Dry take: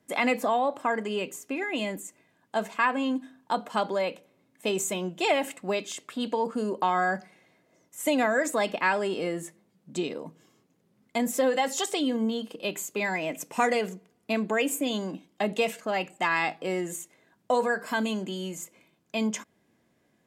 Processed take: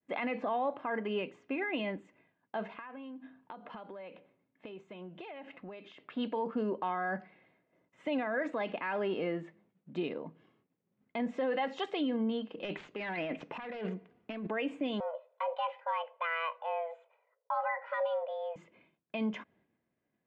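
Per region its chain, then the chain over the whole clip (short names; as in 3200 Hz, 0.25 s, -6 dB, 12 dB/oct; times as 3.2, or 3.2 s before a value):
2.72–6.1 compressor 16:1, threshold -38 dBFS + air absorption 51 m
12.57–14.47 self-modulated delay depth 0.22 ms + negative-ratio compressor -34 dBFS
15–18.56 frequency shift +330 Hz + LPF 1100 Hz 6 dB/oct + comb 2 ms, depth 37%
whole clip: expander -60 dBFS; LPF 3000 Hz 24 dB/oct; limiter -21.5 dBFS; gain -3.5 dB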